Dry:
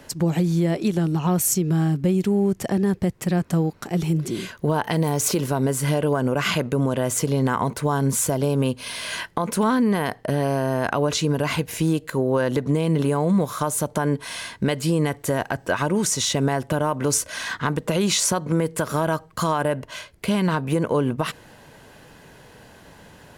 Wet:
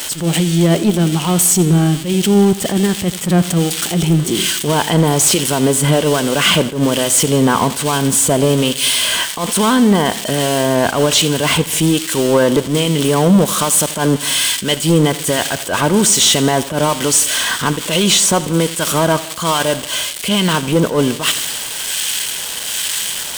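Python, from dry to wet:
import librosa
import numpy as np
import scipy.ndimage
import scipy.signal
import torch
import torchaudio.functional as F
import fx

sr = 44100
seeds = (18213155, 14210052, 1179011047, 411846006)

y = x + 0.5 * 10.0 ** (-17.5 / 20.0) * np.diff(np.sign(x), prepend=np.sign(x[:1]))
y = fx.notch(y, sr, hz=7500.0, q=15.0)
y = fx.harmonic_tremolo(y, sr, hz=1.2, depth_pct=50, crossover_hz=1500.0)
y = fx.graphic_eq_31(y, sr, hz=(125, 3150, 8000), db=(-7, 10, 10))
y = fx.leveller(y, sr, passes=3)
y = fx.high_shelf(y, sr, hz=9700.0, db=-10.5)
y = fx.echo_feedback(y, sr, ms=84, feedback_pct=60, wet_db=-17)
y = fx.attack_slew(y, sr, db_per_s=130.0)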